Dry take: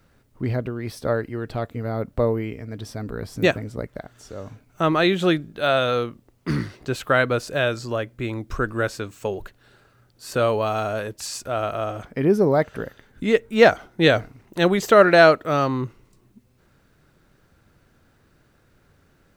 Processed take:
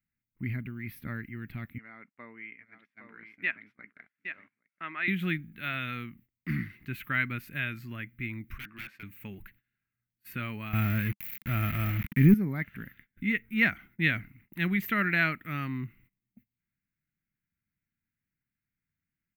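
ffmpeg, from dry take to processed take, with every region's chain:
-filter_complex "[0:a]asettb=1/sr,asplit=3[s0][s1][s2];[s0]atrim=end=1.784[s3];[s1]atrim=start=1.78:end=5.08,asetpts=PTS-STARTPTS,afade=t=in:d=0.004:c=qsin,afade=t=out:st=3.296:d=0.004:c=qsin,highpass=600,lowpass=2500,aecho=1:1:815:0.398,atrim=end_sample=145530[s4];[s2]atrim=start=5.076[s5];[s3][s4]acrossfade=d=0.004:c1=hsin:c2=qsin[s6];[s6][s5]acrossfade=d=0.004:c1=qsin:c2=hsin,asettb=1/sr,asplit=3[s7][s8][s9];[s7]atrim=end=8.584[s10];[s8]atrim=start=8.58:end=9.03,asetpts=PTS-STARTPTS,afade=t=in:d=0.004:c=qsin,afade=t=out:st=0.446:d=0.004:c=qsin,bandpass=f=1200:t=q:w=0.57,aeval=exprs='0.0447*(abs(mod(val(0)/0.0447+3,4)-2)-1)':c=same[s11];[s9]atrim=start=9.026[s12];[s10][s11]acrossfade=d=0.004:c1=hsin:c2=qsin[s13];[s13][s12]acrossfade=d=0.004:c1=qsin:c2=hsin,asettb=1/sr,asplit=3[s14][s15][s16];[s14]atrim=end=10.734[s17];[s15]atrim=start=10.73:end=12.34,asetpts=PTS-STARTPTS,afade=t=in:d=0.004:c=qsin,afade=t=out:st=1.606:d=0.004:c=qsin,acontrast=64,aemphasis=mode=reproduction:type=bsi,aeval=exprs='val(0)*gte(abs(val(0)),0.0562)':c=same[s18];[s16]atrim=start=12.336[s19];[s17][s18]acrossfade=d=0.004:c1=hsin:c2=qsin[s20];[s20][s19]acrossfade=d=0.004:c1=qsin:c2=hsin,firequalizer=gain_entry='entry(110,0);entry(200,2);entry(490,-30);entry(2100,2);entry(3200,-13);entry(5000,-24);entry(7700,-24);entry(14000,5)':delay=0.05:min_phase=1,agate=range=0.0794:threshold=0.00282:ratio=16:detection=peak,lowshelf=f=230:g=-11"

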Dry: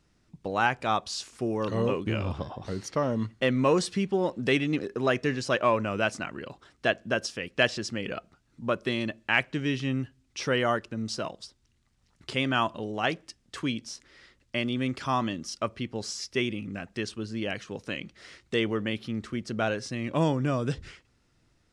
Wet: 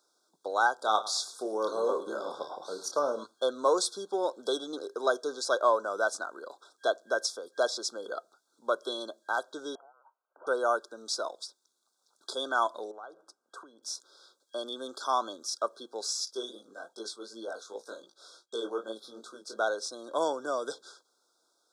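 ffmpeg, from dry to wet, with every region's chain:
-filter_complex "[0:a]asettb=1/sr,asplit=3[s0][s1][s2];[s0]atrim=end=0.754[s3];[s1]atrim=start=0.75:end=3.24,asetpts=PTS-STARTPTS,afade=t=in:d=0.004:c=qsin,afade=t=out:st=2.486:d=0.004:c=qsin,lowshelf=f=100:t=q:w=3:g=-11,asplit=2[s4][s5];[s5]adelay=28,volume=0.376[s6];[s4][s6]amix=inputs=2:normalize=0,atrim=end_sample=109809,aecho=1:1:108|216|324:0.15|0.0449|0.0135,atrim=end_sample=109809[s7];[s2]atrim=start=3.236[s8];[s3][s7]acrossfade=d=0.004:c1=hsin:c2=qsin[s9];[s9][s8]acrossfade=d=0.004:c1=qsin:c2=hsin,asettb=1/sr,asplit=3[s10][s11][s12];[s10]atrim=end=9.754[s13];[s11]atrim=start=9.75:end=10.47,asetpts=PTS-STARTPTS,afade=t=in:d=0.004:c=qsin,afade=t=out:st=0.716:d=0.004:c=qsin,equalizer=f=72:w=0.89:g=-9,acompressor=threshold=0.0158:ratio=12:attack=3.2:release=140:knee=1:detection=peak,lowpass=f=2200:t=q:w=0.5098,lowpass=f=2200:t=q:w=0.6013,lowpass=f=2200:t=q:w=0.9,lowpass=f=2200:t=q:w=2.563,afreqshift=-2600[s14];[s12]atrim=start=10.466[s15];[s13][s14]acrossfade=d=0.004:c1=hsin:c2=qsin[s16];[s16][s15]acrossfade=d=0.004:c1=qsin:c2=hsin,asettb=1/sr,asplit=3[s17][s18][s19];[s17]atrim=end=12.914[s20];[s18]atrim=start=12.91:end=13.83,asetpts=PTS-STARTPTS,afade=t=in:d=0.004:c=qsin,afade=t=out:st=0.916:d=0.004:c=qsin,highshelf=f=2300:t=q:w=1.5:g=-12.5,bandreject=f=60:t=h:w=6,bandreject=f=120:t=h:w=6,bandreject=f=180:t=h:w=6,acompressor=threshold=0.0112:ratio=10:attack=3.2:release=140:knee=1:detection=peak[s21];[s19]atrim=start=13.826[s22];[s20][s21]acrossfade=d=0.004:c1=hsin:c2=qsin[s23];[s23][s22]acrossfade=d=0.004:c1=qsin:c2=hsin,asettb=1/sr,asplit=3[s24][s25][s26];[s24]atrim=end=16.254[s27];[s25]atrim=start=16.25:end=19.57,asetpts=PTS-STARTPTS,afade=t=in:d=0.004:c=qsin,afade=t=out:st=3.316:d=0.004:c=qsin,agate=range=0.0224:threshold=0.00158:ratio=3:release=100:detection=peak,asplit=2[s28][s29];[s29]adelay=18,volume=0.398[s30];[s28][s30]amix=inputs=2:normalize=0,atrim=end_sample=146412,flanger=delay=17.5:depth=7:speed=2.6[s31];[s26]atrim=start=19.566[s32];[s27][s31]acrossfade=d=0.004:c1=hsin:c2=qsin[s33];[s33][s32]acrossfade=d=0.004:c1=qsin:c2=hsin,afftfilt=real='re*(1-between(b*sr/4096,1600,3300))':imag='im*(1-between(b*sr/4096,1600,3300))':win_size=4096:overlap=0.75,highpass=f=420:w=0.5412,highpass=f=420:w=1.3066,highshelf=f=6600:g=7.5"

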